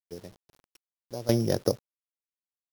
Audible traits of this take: a buzz of ramps at a fixed pitch in blocks of 8 samples; random-step tremolo 3.1 Hz, depth 90%; a quantiser's noise floor 10-bit, dither none

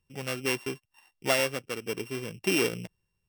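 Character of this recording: a buzz of ramps at a fixed pitch in blocks of 16 samples; tremolo saw down 1.1 Hz, depth 35%

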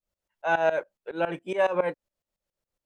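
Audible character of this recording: tremolo saw up 7.2 Hz, depth 90%

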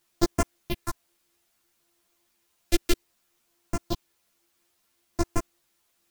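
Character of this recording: a buzz of ramps at a fixed pitch in blocks of 128 samples; phasing stages 4, 0.61 Hz, lowest notch 140–3600 Hz; a quantiser's noise floor 12-bit, dither triangular; a shimmering, thickened sound

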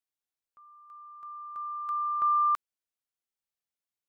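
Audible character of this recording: noise floor -93 dBFS; spectral tilt -3.0 dB/oct

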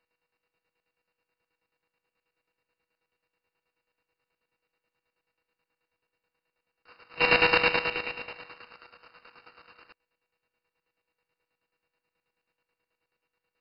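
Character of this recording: a buzz of ramps at a fixed pitch in blocks of 16 samples; chopped level 9.3 Hz, depth 65%, duty 45%; aliases and images of a low sample rate 6000 Hz, jitter 0%; MP2

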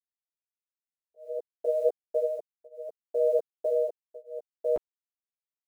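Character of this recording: a quantiser's noise floor 10-bit, dither none; tremolo triangle 0.65 Hz, depth 100%; a shimmering, thickened sound

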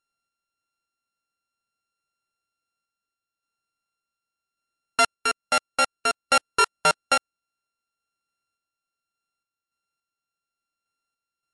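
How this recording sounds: a buzz of ramps at a fixed pitch in blocks of 32 samples; random-step tremolo; MP3

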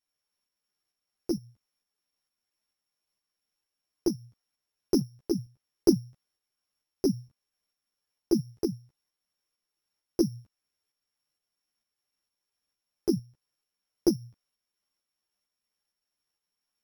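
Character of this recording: a buzz of ramps at a fixed pitch in blocks of 8 samples; tremolo saw up 2.2 Hz, depth 40%; a shimmering, thickened sound

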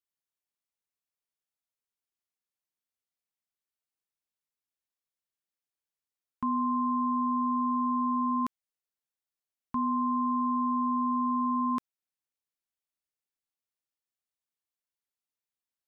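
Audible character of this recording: noise floor -93 dBFS; spectral tilt +6.0 dB/oct

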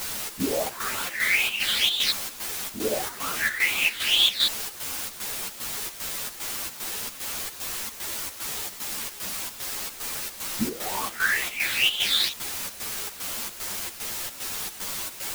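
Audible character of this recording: phasing stages 8, 2.2 Hz, lowest notch 780–1800 Hz; a quantiser's noise floor 6-bit, dither triangular; chopped level 2.5 Hz, depth 65%, duty 70%; a shimmering, thickened sound

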